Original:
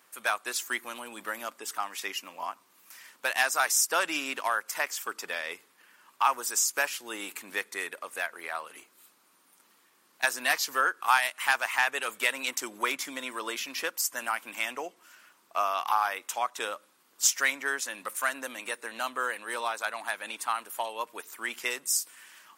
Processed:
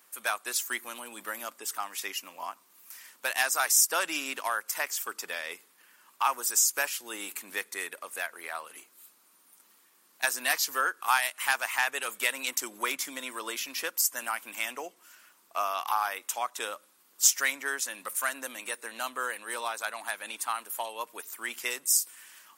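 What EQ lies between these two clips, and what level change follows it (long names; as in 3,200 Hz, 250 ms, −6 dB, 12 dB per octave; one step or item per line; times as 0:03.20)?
high-pass filter 110 Hz
high-shelf EQ 6,500 Hz +9 dB
−2.5 dB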